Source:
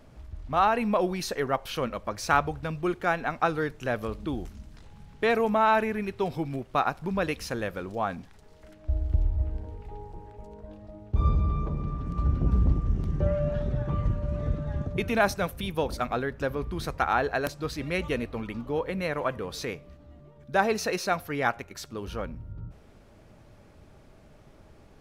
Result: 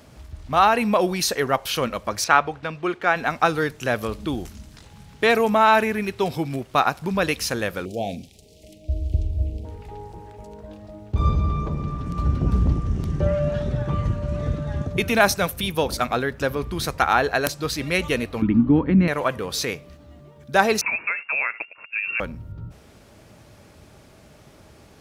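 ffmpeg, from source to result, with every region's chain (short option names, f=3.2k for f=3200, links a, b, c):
-filter_complex "[0:a]asettb=1/sr,asplit=3[a][b][c];[a]atrim=end=2.244[d];[b]atrim=start=2.24:end=3.16,asetpts=PTS-STARTPTS,afade=t=in:d=0.004:c=qsin,afade=t=out:st=0.916:d=0.004:c=qsin,lowpass=2.5k,aemphasis=mode=production:type=bsi[e];[c]atrim=start=3.156[f];[d][e]acrossfade=d=0.004:c1=hsin:c2=qsin[g];[g][f]acrossfade=d=0.004:c1=qsin:c2=hsin,asettb=1/sr,asplit=3[h][i][j];[h]atrim=end=7.854[k];[i]atrim=start=7.85:end=9.65,asetpts=PTS-STARTPTS,afade=t=in:d=0.004:c=qsin,afade=t=out:st=1.796:d=0.004:c=qsin,asuperstop=centerf=1300:order=8:qfactor=0.77,asplit=2[l][m];[m]adelay=44,volume=-13.5dB[n];[l][n]amix=inputs=2:normalize=0,atrim=end_sample=79380[o];[j]atrim=start=9.646[p];[k][o]acrossfade=d=0.004:c1=hsin:c2=qsin[q];[q][p]acrossfade=d=0.004:c1=qsin:c2=hsin,asettb=1/sr,asplit=3[r][s][t];[r]atrim=end=18.424[u];[s]atrim=start=18.42:end=19.08,asetpts=PTS-STARTPTS,afade=t=in:d=0.004:c=qsin,afade=t=out:st=0.656:d=0.004:c=qsin,lowpass=1.8k,lowshelf=f=380:t=q:w=3:g=9.5[v];[t]atrim=start=19.076[w];[u][v]acrossfade=d=0.004:c1=hsin:c2=qsin[x];[x][w]acrossfade=d=0.004:c1=qsin:c2=hsin,asettb=1/sr,asplit=3[y][z][aa];[y]atrim=end=20.814[ab];[z]atrim=start=20.81:end=22.2,asetpts=PTS-STARTPTS,afade=t=in:d=0.004:c=qsin,afade=t=out:st=1.386:d=0.004:c=qsin,agate=range=-14dB:threshold=-43dB:ratio=16:release=100:detection=peak,acompressor=threshold=-28dB:ratio=6:attack=3.2:release=140:knee=1:detection=peak,lowpass=f=2.4k:t=q:w=0.5098,lowpass=f=2.4k:t=q:w=0.6013,lowpass=f=2.4k:t=q:w=0.9,lowpass=f=2.4k:t=q:w=2.563,afreqshift=-2800[ac];[aa]atrim=start=22.196[ad];[ab][ac]acrossfade=d=0.004:c1=hsin:c2=qsin[ae];[ae][ad]acrossfade=d=0.004:c1=qsin:c2=hsin,highpass=55,highshelf=f=2.8k:g=9,volume=5dB"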